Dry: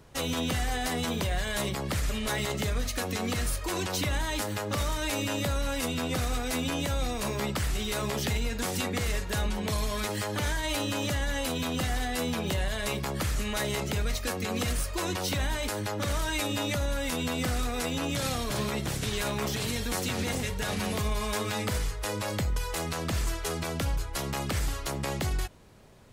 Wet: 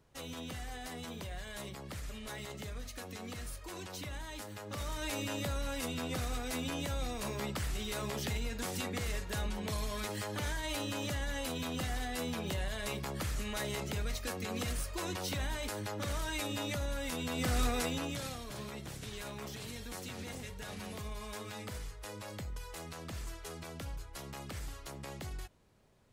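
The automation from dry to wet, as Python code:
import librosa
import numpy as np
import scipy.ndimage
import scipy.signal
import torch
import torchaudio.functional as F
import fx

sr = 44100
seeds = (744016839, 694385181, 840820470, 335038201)

y = fx.gain(x, sr, db=fx.line((4.57, -13.5), (5.04, -7.0), (17.27, -7.0), (17.65, 0.0), (18.4, -13.0)))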